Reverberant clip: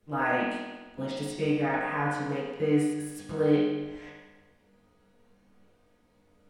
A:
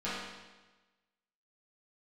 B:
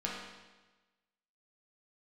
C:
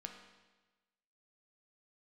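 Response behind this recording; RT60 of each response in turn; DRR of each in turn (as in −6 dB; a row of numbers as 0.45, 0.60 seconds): A; 1.2, 1.2, 1.2 seconds; −12.0, −4.5, 3.0 decibels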